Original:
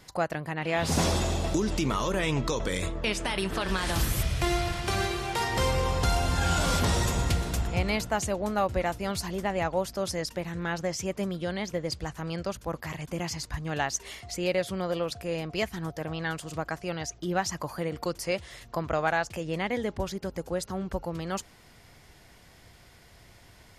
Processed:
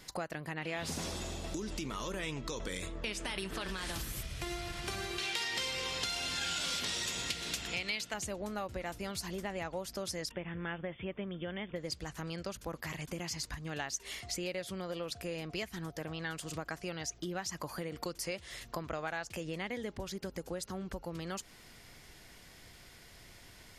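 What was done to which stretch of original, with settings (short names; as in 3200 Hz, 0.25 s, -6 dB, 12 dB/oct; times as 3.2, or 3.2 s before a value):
5.18–8.14 weighting filter D
10.31–11.76 brick-wall FIR low-pass 3600 Hz
whole clip: bell 780 Hz -5.5 dB 1.8 oct; compressor, threshold -36 dBFS; bell 86 Hz -7 dB 2.3 oct; gain +2 dB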